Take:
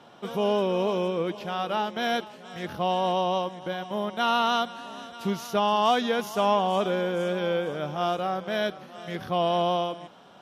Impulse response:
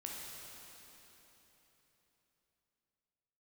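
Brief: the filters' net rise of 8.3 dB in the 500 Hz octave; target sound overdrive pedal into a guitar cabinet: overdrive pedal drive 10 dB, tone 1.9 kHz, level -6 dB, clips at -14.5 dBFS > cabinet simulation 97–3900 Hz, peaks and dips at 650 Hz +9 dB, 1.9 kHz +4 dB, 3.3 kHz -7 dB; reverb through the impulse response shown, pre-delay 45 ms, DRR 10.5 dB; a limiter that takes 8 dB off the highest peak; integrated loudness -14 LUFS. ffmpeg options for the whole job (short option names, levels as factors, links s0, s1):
-filter_complex "[0:a]equalizer=f=500:t=o:g=4.5,alimiter=limit=0.141:level=0:latency=1,asplit=2[s0][s1];[1:a]atrim=start_sample=2205,adelay=45[s2];[s1][s2]afir=irnorm=-1:irlink=0,volume=0.335[s3];[s0][s3]amix=inputs=2:normalize=0,asplit=2[s4][s5];[s5]highpass=f=720:p=1,volume=3.16,asoftclip=type=tanh:threshold=0.188[s6];[s4][s6]amix=inputs=2:normalize=0,lowpass=f=1900:p=1,volume=0.501,highpass=97,equalizer=f=650:t=q:w=4:g=9,equalizer=f=1900:t=q:w=4:g=4,equalizer=f=3300:t=q:w=4:g=-7,lowpass=f=3900:w=0.5412,lowpass=f=3900:w=1.3066,volume=2.66"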